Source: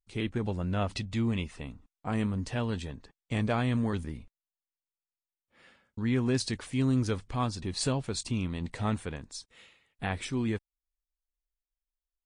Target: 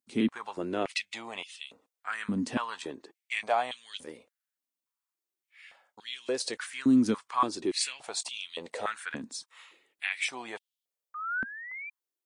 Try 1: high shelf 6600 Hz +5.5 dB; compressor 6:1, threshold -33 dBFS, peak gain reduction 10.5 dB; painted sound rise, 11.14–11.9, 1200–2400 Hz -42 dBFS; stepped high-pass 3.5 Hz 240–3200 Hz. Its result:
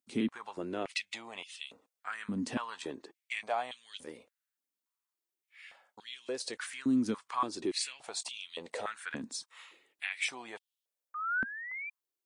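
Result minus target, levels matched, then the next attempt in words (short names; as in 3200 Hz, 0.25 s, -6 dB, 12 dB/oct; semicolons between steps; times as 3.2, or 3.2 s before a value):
compressor: peak gain reduction +6 dB
high shelf 6600 Hz +5.5 dB; compressor 6:1, threshold -25.5 dBFS, peak gain reduction 4 dB; painted sound rise, 11.14–11.9, 1200–2400 Hz -42 dBFS; stepped high-pass 3.5 Hz 240–3200 Hz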